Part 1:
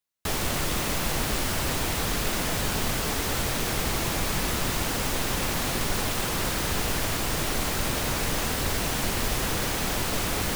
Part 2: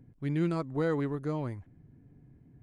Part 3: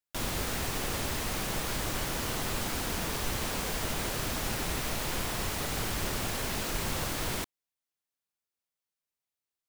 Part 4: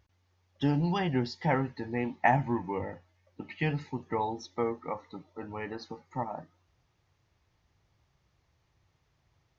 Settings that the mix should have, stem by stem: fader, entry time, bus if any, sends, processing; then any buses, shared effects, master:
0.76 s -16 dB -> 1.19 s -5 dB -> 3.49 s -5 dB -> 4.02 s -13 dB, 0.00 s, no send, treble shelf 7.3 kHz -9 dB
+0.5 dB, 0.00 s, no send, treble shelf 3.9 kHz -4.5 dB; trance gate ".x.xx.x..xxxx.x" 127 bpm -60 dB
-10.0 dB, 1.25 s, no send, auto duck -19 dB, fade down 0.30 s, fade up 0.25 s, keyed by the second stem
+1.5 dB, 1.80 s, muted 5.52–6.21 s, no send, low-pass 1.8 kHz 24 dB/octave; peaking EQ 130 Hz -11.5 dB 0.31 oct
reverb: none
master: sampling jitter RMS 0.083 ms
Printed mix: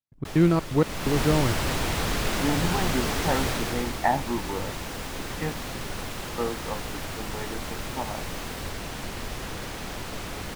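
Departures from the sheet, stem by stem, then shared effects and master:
stem 1 -16.0 dB -> -9.5 dB; stem 2 +0.5 dB -> +10.0 dB; master: missing sampling jitter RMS 0.083 ms

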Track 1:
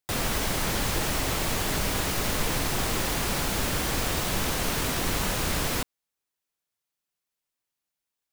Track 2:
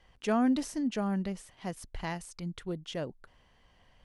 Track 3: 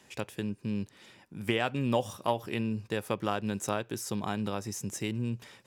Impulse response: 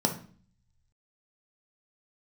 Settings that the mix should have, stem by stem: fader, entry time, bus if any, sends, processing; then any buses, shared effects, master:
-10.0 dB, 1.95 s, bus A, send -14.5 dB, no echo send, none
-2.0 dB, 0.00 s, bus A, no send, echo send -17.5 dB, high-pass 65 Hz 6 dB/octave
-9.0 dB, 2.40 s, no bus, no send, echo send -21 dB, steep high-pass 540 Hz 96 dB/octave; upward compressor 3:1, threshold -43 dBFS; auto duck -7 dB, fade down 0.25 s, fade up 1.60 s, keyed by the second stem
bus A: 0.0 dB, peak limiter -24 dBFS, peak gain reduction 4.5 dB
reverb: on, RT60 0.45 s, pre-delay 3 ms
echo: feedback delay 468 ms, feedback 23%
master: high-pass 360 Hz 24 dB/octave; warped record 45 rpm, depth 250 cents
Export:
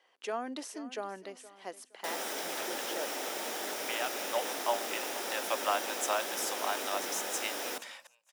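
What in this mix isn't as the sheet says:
stem 3 -9.0 dB -> +2.5 dB; master: missing warped record 45 rpm, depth 250 cents

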